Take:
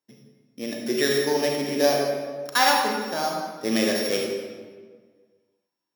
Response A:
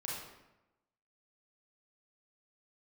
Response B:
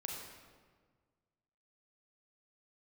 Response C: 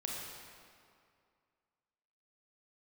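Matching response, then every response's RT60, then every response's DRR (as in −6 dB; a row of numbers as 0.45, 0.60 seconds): B; 0.95, 1.6, 2.3 seconds; −5.0, −1.0, −2.5 decibels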